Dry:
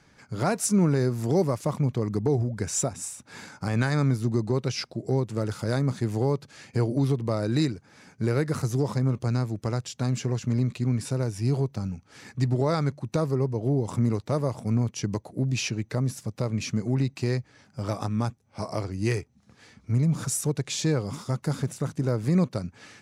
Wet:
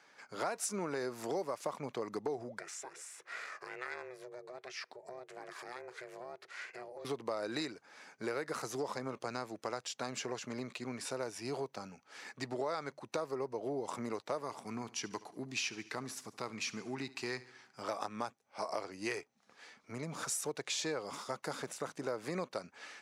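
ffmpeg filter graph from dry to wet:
-filter_complex "[0:a]asettb=1/sr,asplit=3[s0][s1][s2];[s0]atrim=end=2.594[s3];[s1]atrim=start=2.59:end=7.05,asetpts=PTS-STARTPTS,afade=t=in:d=0.004:c=qsin,afade=t=out:st=4.456:d=0.004:c=qsin,acompressor=threshold=0.00891:ratio=2.5:attack=3.2:release=140:knee=1:detection=peak,equalizer=f=1900:w=2.1:g=11,aeval=exprs='val(0)*sin(2*PI*250*n/s)':c=same[s4];[s2]atrim=start=7.046[s5];[s3][s4]acrossfade=d=0.004:c1=hsin:c2=qsin[s6];[s6][s5]acrossfade=d=0.004:c1=qsin:c2=hsin,asettb=1/sr,asplit=3[s7][s8][s9];[s7]atrim=end=14.424[s10];[s8]atrim=start=14.42:end=17.82,asetpts=PTS-STARTPTS,afade=t=in:d=0.004:c=qsin,afade=t=out:st=3.396:d=0.004:c=qsin,equalizer=f=560:w=3.2:g=-13,aecho=1:1:72|144|216|288|360:0.112|0.0617|0.0339|0.0187|0.0103,atrim=end_sample=149940[s11];[s9]atrim=start=17.816[s12];[s10][s11]acrossfade=d=0.004:c1=hsin:c2=qsin[s13];[s13][s12]acrossfade=d=0.004:c1=qsin:c2=hsin,highpass=560,highshelf=f=5300:g=-7,acompressor=threshold=0.0224:ratio=6"

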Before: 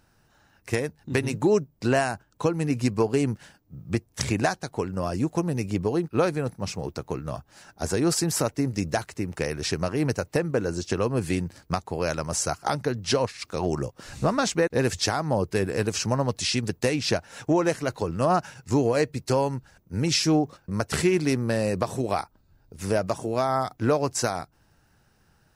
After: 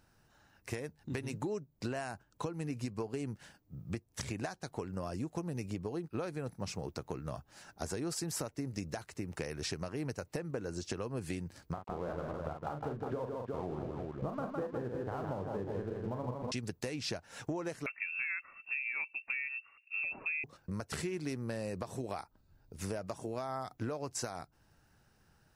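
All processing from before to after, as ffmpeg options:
-filter_complex "[0:a]asettb=1/sr,asplit=3[s0][s1][s2];[s0]atrim=end=11.734[s3];[s1]atrim=start=11.73:end=16.52,asetpts=PTS-STARTPTS,afade=t=in:d=0.004:c=qsin,afade=t=out:st=4.786:d=0.004:c=qsin,lowpass=f=1300:w=0.5412,lowpass=f=1300:w=1.3066,aeval=exprs='sgn(val(0))*max(abs(val(0))-0.00841,0)':c=same,aecho=1:1:40|159|200|362:0.447|0.531|0.355|0.422,atrim=end_sample=211239[s4];[s2]atrim=start=16.516[s5];[s3][s4]acrossfade=d=0.004:c1=hsin:c2=qsin[s6];[s6][s5]acrossfade=d=0.004:c1=qsin:c2=hsin,asettb=1/sr,asplit=3[s7][s8][s9];[s7]atrim=end=17.864[s10];[s8]atrim=start=17.86:end=20.44,asetpts=PTS-STARTPTS,afade=t=in:d=0.004:c=qsin,afade=t=out:st=2.576:d=0.004:c=qsin,highshelf=f=2000:g=-8,lowpass=f=2400:t=q:w=0.5098,lowpass=f=2400:t=q:w=0.6013,lowpass=f=2400:t=q:w=0.9,lowpass=f=2400:t=q:w=2.563,afreqshift=-2800[s11];[s9]atrim=start=20.436[s12];[s10][s11]acrossfade=d=0.004:c1=hsin:c2=qsin[s13];[s13][s12]acrossfade=d=0.004:c1=qsin:c2=hsin,alimiter=limit=0.211:level=0:latency=1:release=445,acompressor=threshold=0.0316:ratio=5,volume=0.562"

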